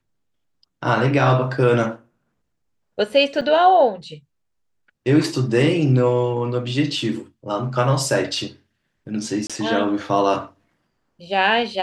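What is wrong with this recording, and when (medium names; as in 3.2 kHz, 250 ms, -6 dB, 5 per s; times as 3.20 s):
3.41–3.42 s: dropout 6.5 ms
9.47–9.50 s: dropout 26 ms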